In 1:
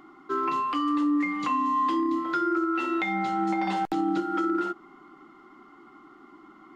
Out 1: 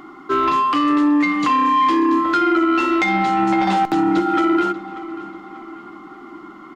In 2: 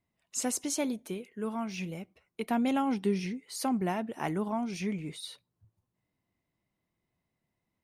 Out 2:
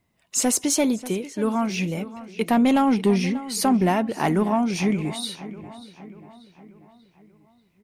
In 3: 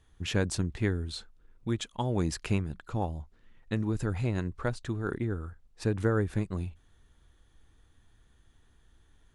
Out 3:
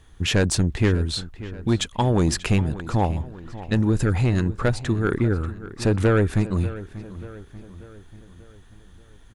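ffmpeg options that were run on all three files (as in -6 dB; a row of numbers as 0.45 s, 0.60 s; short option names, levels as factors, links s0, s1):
-filter_complex "[0:a]aeval=exprs='0.211*(cos(1*acos(clip(val(0)/0.211,-1,1)))-cos(1*PI/2))+0.0422*(cos(5*acos(clip(val(0)/0.211,-1,1)))-cos(5*PI/2))':c=same,asplit=2[s0][s1];[s1]adelay=588,lowpass=f=4200:p=1,volume=0.168,asplit=2[s2][s3];[s3]adelay=588,lowpass=f=4200:p=1,volume=0.52,asplit=2[s4][s5];[s5]adelay=588,lowpass=f=4200:p=1,volume=0.52,asplit=2[s6][s7];[s7]adelay=588,lowpass=f=4200:p=1,volume=0.52,asplit=2[s8][s9];[s9]adelay=588,lowpass=f=4200:p=1,volume=0.52[s10];[s2][s4][s6][s8][s10]amix=inputs=5:normalize=0[s11];[s0][s11]amix=inputs=2:normalize=0,volume=1.88"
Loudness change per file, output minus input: +9.5 LU, +10.5 LU, +9.5 LU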